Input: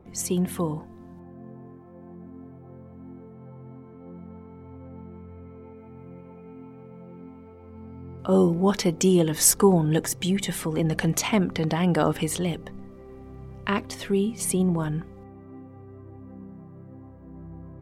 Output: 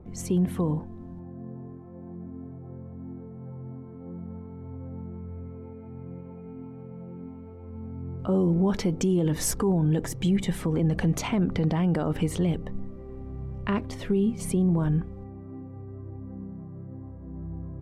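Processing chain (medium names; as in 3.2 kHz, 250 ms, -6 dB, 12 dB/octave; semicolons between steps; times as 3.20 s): tilt EQ -2.5 dB/octave; peak limiter -14 dBFS, peak gain reduction 11.5 dB; trim -2 dB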